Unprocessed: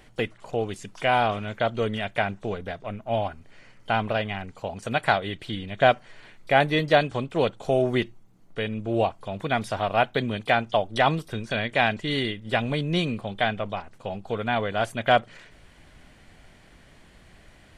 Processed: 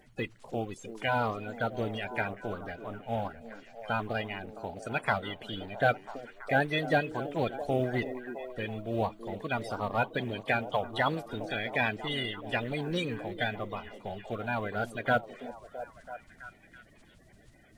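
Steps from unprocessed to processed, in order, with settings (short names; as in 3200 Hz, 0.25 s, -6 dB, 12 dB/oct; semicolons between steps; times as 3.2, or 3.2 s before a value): bin magnitudes rounded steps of 30 dB; delay with a stepping band-pass 0.331 s, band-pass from 320 Hz, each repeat 0.7 oct, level -7 dB; companded quantiser 8-bit; gain -6.5 dB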